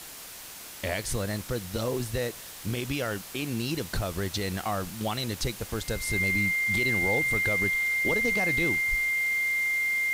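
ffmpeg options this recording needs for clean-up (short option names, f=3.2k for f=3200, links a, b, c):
-af "bandreject=f=2.1k:w=30,afwtdn=0.0079"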